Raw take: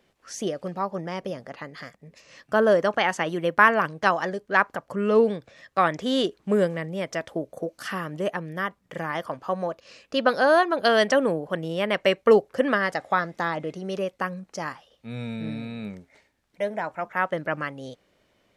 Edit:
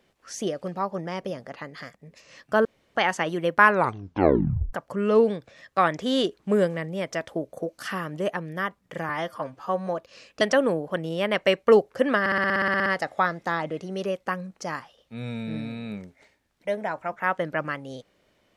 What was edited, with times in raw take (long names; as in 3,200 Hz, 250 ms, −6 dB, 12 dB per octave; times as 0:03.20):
0:02.65–0:02.95: fill with room tone
0:03.61: tape stop 1.12 s
0:09.09–0:09.61: time-stretch 1.5×
0:10.15–0:11.00: remove
0:12.79: stutter 0.06 s, 12 plays